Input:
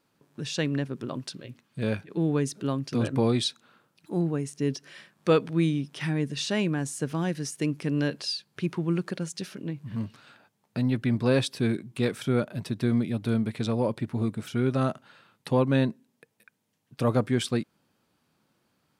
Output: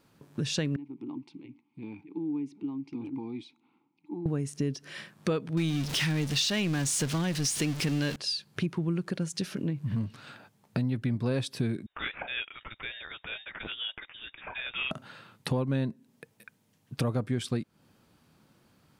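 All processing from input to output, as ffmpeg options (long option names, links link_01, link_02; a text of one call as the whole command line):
ffmpeg -i in.wav -filter_complex "[0:a]asettb=1/sr,asplit=3[link_01][link_02][link_03];[link_01]atrim=end=0.764[link_04];[link_02]atrim=start=0.76:end=4.26,asetpts=PTS-STARTPTS,afade=type=in:duration=0.004:curve=qsin,afade=type=out:start_time=3.496:duration=0.004:curve=qsin,acompressor=threshold=-32dB:ratio=2.5:attack=3.2:release=140:knee=1:detection=peak,asplit=3[link_05][link_06][link_07];[link_05]bandpass=frequency=300:width_type=q:width=8,volume=0dB[link_08];[link_06]bandpass=frequency=870:width_type=q:width=8,volume=-6dB[link_09];[link_07]bandpass=frequency=2240:width_type=q:width=8,volume=-9dB[link_10];[link_08][link_09][link_10]amix=inputs=3:normalize=0[link_11];[link_03]atrim=start=4.256[link_12];[link_04][link_11]acrossfade=duration=0.004:curve1=hsin:curve2=qsin[link_13];[link_13][link_12]acrossfade=duration=0.004:curve1=qsin:curve2=hsin,asettb=1/sr,asplit=3[link_14][link_15][link_16];[link_14]atrim=end=5.574[link_17];[link_15]atrim=start=5.57:end=8.16,asetpts=PTS-STARTPTS,afade=type=in:duration=0.004:curve=qsin,afade=type=out:start_time=2.586:duration=0.004:curve=qsin,aeval=exprs='val(0)+0.5*0.0237*sgn(val(0))':channel_layout=same,equalizer=frequency=4400:width_type=o:width=2.6:gain=10.5[link_18];[link_16]atrim=start=8.156[link_19];[link_17][link_18]acrossfade=duration=0.004:curve1=hsin:curve2=qsin[link_20];[link_20][link_19]acrossfade=duration=0.004:curve1=qsin:curve2=hsin,asettb=1/sr,asplit=3[link_21][link_22][link_23];[link_21]atrim=end=11.864[link_24];[link_22]atrim=start=11.86:end=14.91,asetpts=PTS-STARTPTS,afade=type=in:duration=0.004:curve=qsin,afade=type=out:start_time=3.046:duration=0.004:curve=qsin,highpass=1300,aeval=exprs='0.0531*(abs(mod(val(0)/0.0531+3,4)-2)-1)':channel_layout=same,lowpass=frequency=3300:width_type=q:width=0.5098,lowpass=frequency=3300:width_type=q:width=0.6013,lowpass=frequency=3300:width_type=q:width=0.9,lowpass=frequency=3300:width_type=q:width=2.563,afreqshift=-3900[link_25];[link_23]atrim=start=14.906[link_26];[link_24][link_25]acrossfade=duration=0.004:curve1=hsin:curve2=qsin[link_27];[link_27][link_26]acrossfade=duration=0.004:curve1=qsin:curve2=hsin,lowshelf=frequency=160:gain=8.5,acompressor=threshold=-34dB:ratio=4,volume=5.5dB" out.wav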